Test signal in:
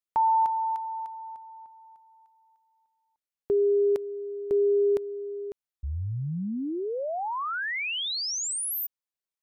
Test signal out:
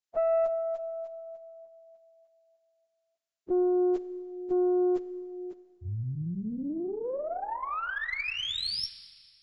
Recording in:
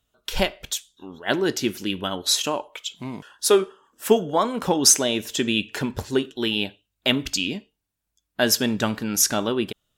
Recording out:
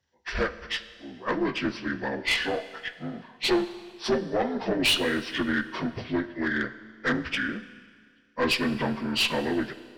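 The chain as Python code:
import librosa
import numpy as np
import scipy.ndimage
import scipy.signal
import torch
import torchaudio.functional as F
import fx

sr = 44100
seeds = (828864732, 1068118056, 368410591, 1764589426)

y = fx.partial_stretch(x, sr, pct=76)
y = fx.tube_stage(y, sr, drive_db=18.0, bias=0.45)
y = fx.rev_schroeder(y, sr, rt60_s=1.9, comb_ms=28, drr_db=13.5)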